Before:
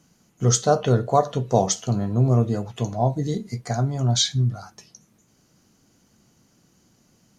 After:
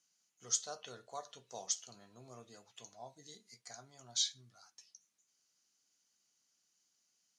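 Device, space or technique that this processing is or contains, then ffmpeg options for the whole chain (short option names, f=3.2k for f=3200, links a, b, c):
piezo pickup straight into a mixer: -af "lowpass=6.4k,aderivative,volume=-7dB"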